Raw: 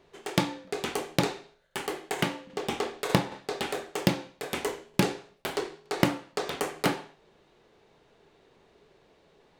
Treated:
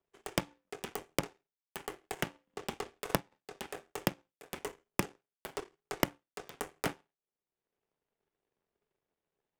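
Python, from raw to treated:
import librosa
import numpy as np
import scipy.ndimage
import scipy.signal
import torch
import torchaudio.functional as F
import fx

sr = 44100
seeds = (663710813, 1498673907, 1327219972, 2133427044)

y = fx.peak_eq(x, sr, hz=4100.0, db=-14.0, octaves=0.24)
y = fx.power_curve(y, sr, exponent=2.0)
y = fx.band_squash(y, sr, depth_pct=70)
y = y * 10.0 ** (4.0 / 20.0)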